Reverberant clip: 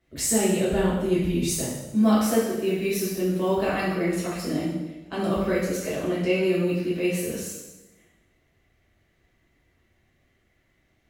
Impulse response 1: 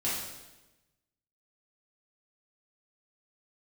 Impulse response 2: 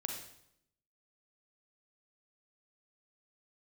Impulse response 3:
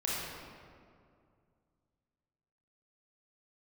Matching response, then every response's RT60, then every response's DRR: 1; 1.1, 0.75, 2.3 seconds; −9.5, 2.0, −6.5 decibels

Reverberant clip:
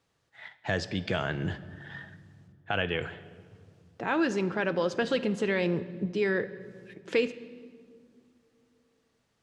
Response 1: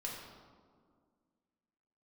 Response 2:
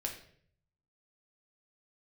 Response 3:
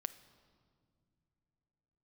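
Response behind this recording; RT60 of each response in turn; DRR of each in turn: 3; 1.9 s, 0.60 s, non-exponential decay; −3.5, 1.0, 12.0 decibels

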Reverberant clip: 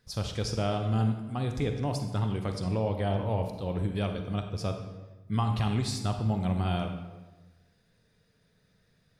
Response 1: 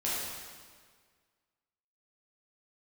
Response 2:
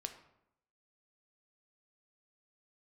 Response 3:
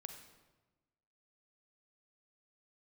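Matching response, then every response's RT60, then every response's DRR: 3; 1.7, 0.80, 1.2 seconds; −8.5, 6.0, 5.5 decibels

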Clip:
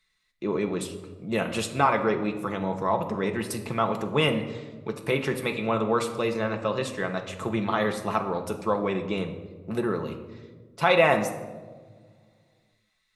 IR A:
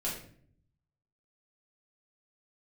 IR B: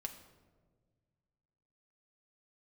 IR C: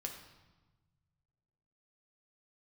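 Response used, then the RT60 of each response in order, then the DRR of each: B; 0.55, 1.5, 1.2 seconds; −7.0, 3.0, 1.5 decibels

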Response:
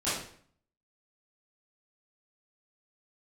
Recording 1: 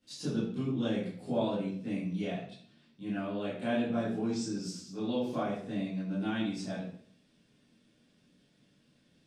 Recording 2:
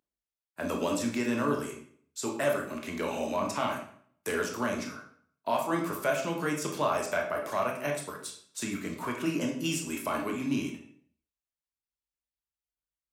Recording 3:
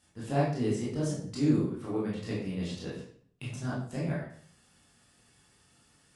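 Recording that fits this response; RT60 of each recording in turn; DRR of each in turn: 1; 0.55, 0.55, 0.55 seconds; −14.0, 0.5, −7.0 decibels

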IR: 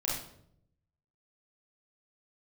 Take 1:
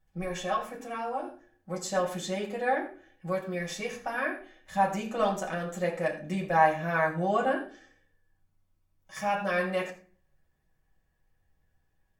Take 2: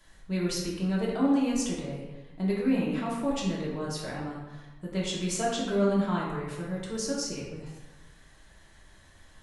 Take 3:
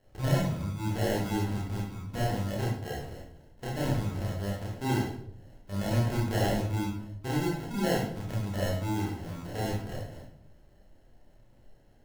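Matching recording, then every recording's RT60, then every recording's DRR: 3; non-exponential decay, 1.2 s, 0.70 s; −3.5, −5.5, −6.0 decibels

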